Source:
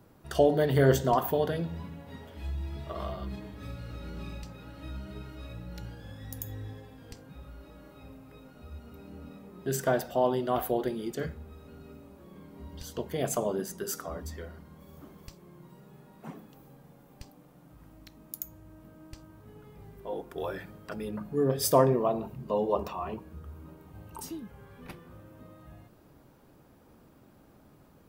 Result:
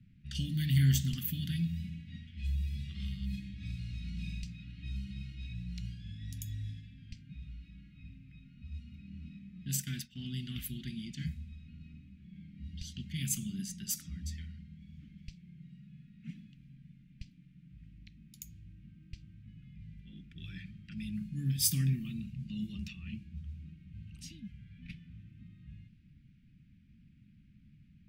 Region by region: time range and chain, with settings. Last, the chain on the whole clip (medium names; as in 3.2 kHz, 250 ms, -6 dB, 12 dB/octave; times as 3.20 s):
9.68–10.20 s: expander -36 dBFS + bass shelf 70 Hz -11 dB
whole clip: elliptic band-stop 200–2300 Hz, stop band 50 dB; level-controlled noise filter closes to 1.9 kHz, open at -33.5 dBFS; trim +2 dB